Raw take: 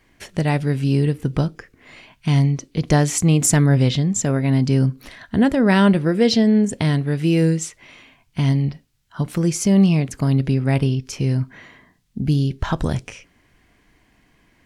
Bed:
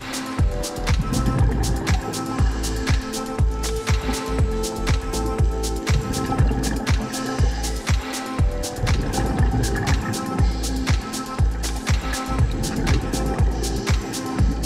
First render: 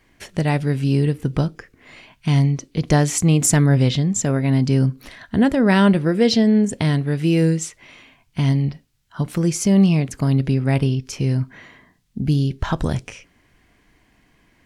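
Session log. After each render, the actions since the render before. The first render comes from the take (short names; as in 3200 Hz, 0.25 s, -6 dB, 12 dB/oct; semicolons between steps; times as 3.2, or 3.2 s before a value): nothing audible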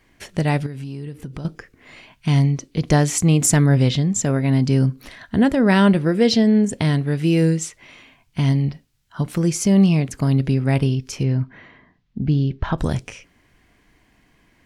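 0.66–1.45 compressor, threshold -28 dBFS; 11.23–12.78 air absorption 210 m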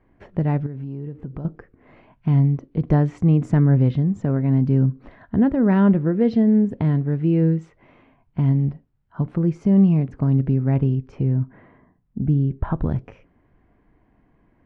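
LPF 1000 Hz 12 dB/oct; dynamic EQ 630 Hz, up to -5 dB, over -31 dBFS, Q 1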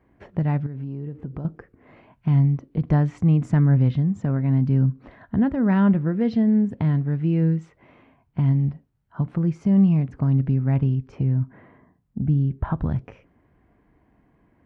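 HPF 43 Hz; dynamic EQ 410 Hz, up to -7 dB, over -34 dBFS, Q 1.1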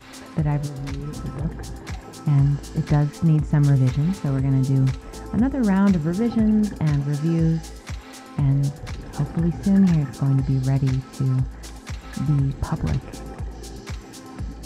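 add bed -12.5 dB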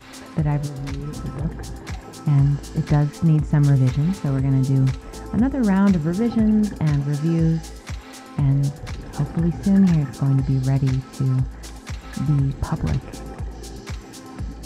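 gain +1 dB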